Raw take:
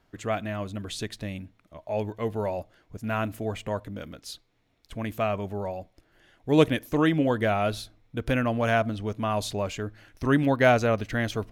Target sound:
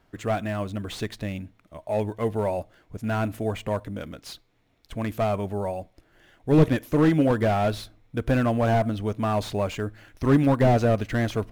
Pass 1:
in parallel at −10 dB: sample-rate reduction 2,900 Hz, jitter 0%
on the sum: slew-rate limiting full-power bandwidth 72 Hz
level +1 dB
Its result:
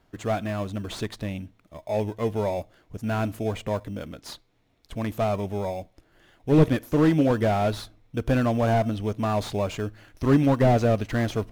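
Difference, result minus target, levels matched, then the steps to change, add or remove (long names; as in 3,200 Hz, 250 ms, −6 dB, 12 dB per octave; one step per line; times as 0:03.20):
sample-rate reduction: distortion +8 dB
change: sample-rate reduction 9,200 Hz, jitter 0%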